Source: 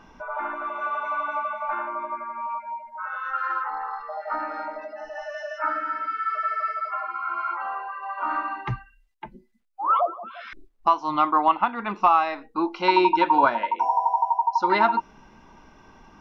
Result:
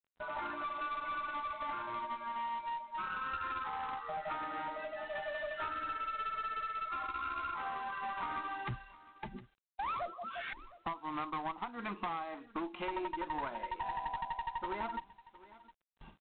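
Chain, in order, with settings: low-pass that closes with the level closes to 1.6 kHz, closed at -20 dBFS; gate with hold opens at -38 dBFS; spectral noise reduction 7 dB; compression 6:1, threshold -36 dBFS, peak gain reduction 20 dB; one-sided clip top -39 dBFS, bottom -27.5 dBFS; delay 712 ms -19 dB; trim +1 dB; G.726 24 kbps 8 kHz

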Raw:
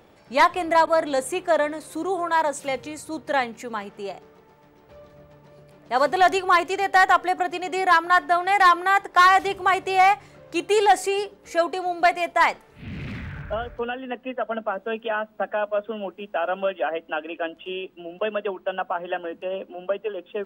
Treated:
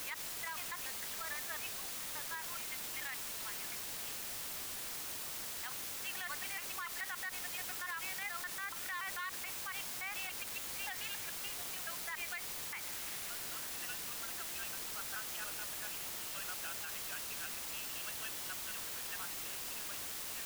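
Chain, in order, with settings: slices played last to first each 143 ms, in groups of 3; Bessel high-pass 2.6 kHz, order 4; tape spacing loss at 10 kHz 40 dB; in parallel at -4 dB: word length cut 6-bit, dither triangular; on the sum: peak limiter -29.5 dBFS, peak gain reduction 10.5 dB; trim -3 dB

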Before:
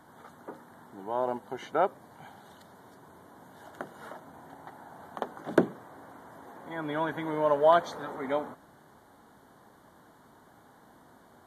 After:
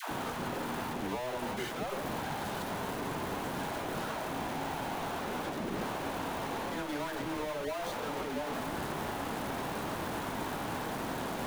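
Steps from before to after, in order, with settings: one-bit comparator; treble shelf 2.6 kHz -8 dB; in parallel at -3.5 dB: bit crusher 8-bit; on the sum: phase dispersion lows, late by 106 ms, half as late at 530 Hz; trim -6 dB

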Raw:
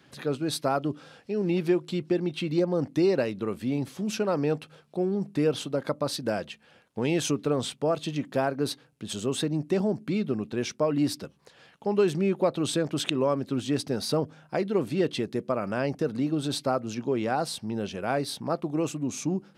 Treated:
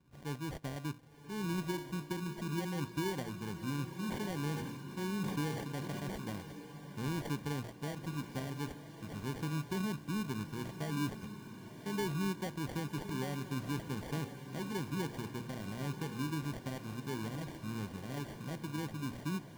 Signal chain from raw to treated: amplifier tone stack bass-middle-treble 10-0-1; de-hum 117.7 Hz, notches 23; sample-and-hold 34×; echo that smears into a reverb 1096 ms, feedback 47%, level -10 dB; 3.96–6.28 s: decay stretcher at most 37 dB/s; trim +8 dB

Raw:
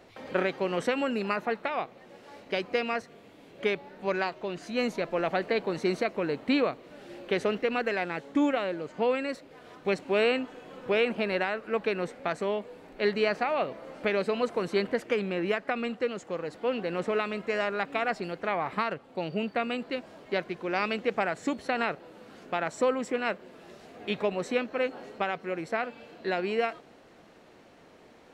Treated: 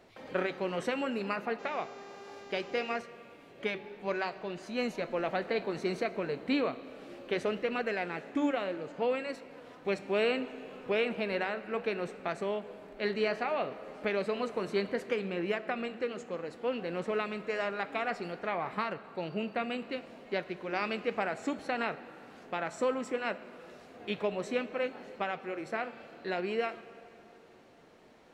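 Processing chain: 1.58–2.98 s: mains buzz 400 Hz, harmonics 18, -46 dBFS -6 dB/octave; on a send at -14 dB: reverberation RT60 3.0 s, pre-delay 5 ms; on the sum: flange 0.64 Hz, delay 4.5 ms, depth 5.5 ms, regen -74%

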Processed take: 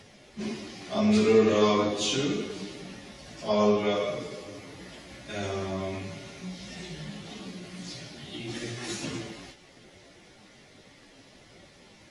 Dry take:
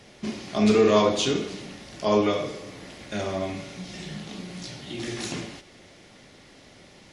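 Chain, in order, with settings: plain phase-vocoder stretch 1.7×

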